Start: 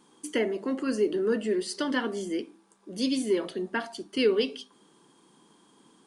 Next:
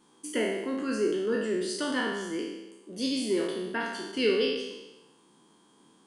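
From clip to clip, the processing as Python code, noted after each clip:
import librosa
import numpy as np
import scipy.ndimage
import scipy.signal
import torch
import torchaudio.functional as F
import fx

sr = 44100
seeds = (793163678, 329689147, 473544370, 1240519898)

y = fx.spec_trails(x, sr, decay_s=1.04)
y = F.gain(torch.from_numpy(y), -4.0).numpy()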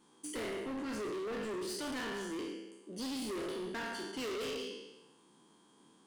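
y = np.clip(10.0 ** (33.5 / 20.0) * x, -1.0, 1.0) / 10.0 ** (33.5 / 20.0)
y = F.gain(torch.from_numpy(y), -3.5).numpy()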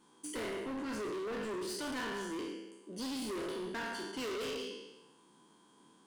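y = fx.small_body(x, sr, hz=(1000.0, 1500.0), ring_ms=45, db=6)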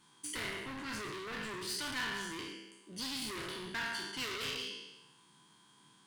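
y = fx.graphic_eq_10(x, sr, hz=(125, 250, 500, 2000, 4000, 16000), db=(9, -6, -9, 5, 5, 5))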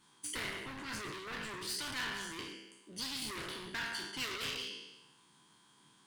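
y = fx.hpss(x, sr, part='harmonic', gain_db=-7)
y = F.gain(torch.from_numpy(y), 2.5).numpy()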